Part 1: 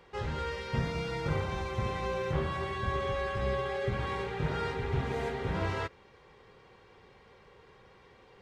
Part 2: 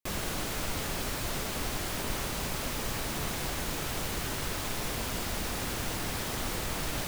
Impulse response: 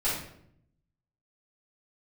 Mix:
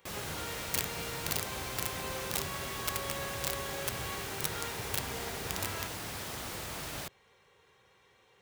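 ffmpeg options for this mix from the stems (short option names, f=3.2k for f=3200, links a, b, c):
-filter_complex "[0:a]bandreject=f=4.8k:w=5.4,aeval=exprs='(mod(13.3*val(0)+1,2)-1)/13.3':c=same,crystalizer=i=4:c=0,volume=-8.5dB[a];[1:a]volume=-5dB[b];[a][b]amix=inputs=2:normalize=0,highpass=70,equalizer=f=240:t=o:w=1.3:g=-4"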